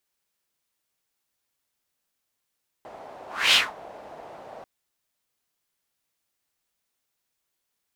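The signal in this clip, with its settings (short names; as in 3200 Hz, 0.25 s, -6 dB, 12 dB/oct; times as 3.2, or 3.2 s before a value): whoosh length 1.79 s, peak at 0.69, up 0.29 s, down 0.21 s, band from 680 Hz, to 3200 Hz, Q 2.9, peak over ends 26 dB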